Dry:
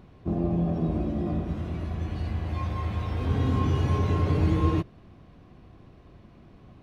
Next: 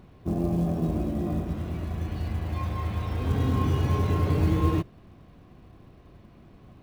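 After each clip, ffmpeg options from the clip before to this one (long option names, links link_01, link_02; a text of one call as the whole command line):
ffmpeg -i in.wav -af "acrusher=bits=8:mode=log:mix=0:aa=0.000001" out.wav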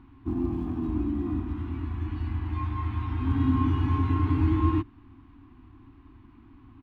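ffmpeg -i in.wav -af "firequalizer=gain_entry='entry(110,0);entry(170,-17);entry(270,9);entry(530,-29);entry(880,2);entry(1700,-2);entry(2900,-4);entry(5500,-17);entry(9100,-20)':delay=0.05:min_phase=1" out.wav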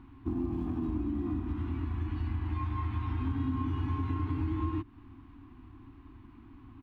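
ffmpeg -i in.wav -af "acompressor=threshold=-29dB:ratio=5" out.wav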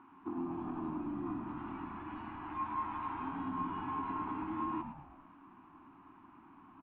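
ffmpeg -i in.wav -filter_complex "[0:a]highpass=400,equalizer=frequency=550:width_type=q:width=4:gain=-8,equalizer=frequency=920:width_type=q:width=4:gain=6,equalizer=frequency=1300:width_type=q:width=4:gain=4,equalizer=frequency=2000:width_type=q:width=4:gain=-6,lowpass=frequency=2600:width=0.5412,lowpass=frequency=2600:width=1.3066,asplit=2[link_01][link_02];[link_02]asplit=5[link_03][link_04][link_05][link_06][link_07];[link_03]adelay=110,afreqshift=-84,volume=-8dB[link_08];[link_04]adelay=220,afreqshift=-168,volume=-15.3dB[link_09];[link_05]adelay=330,afreqshift=-252,volume=-22.7dB[link_10];[link_06]adelay=440,afreqshift=-336,volume=-30dB[link_11];[link_07]adelay=550,afreqshift=-420,volume=-37.3dB[link_12];[link_08][link_09][link_10][link_11][link_12]amix=inputs=5:normalize=0[link_13];[link_01][link_13]amix=inputs=2:normalize=0,volume=1dB" out.wav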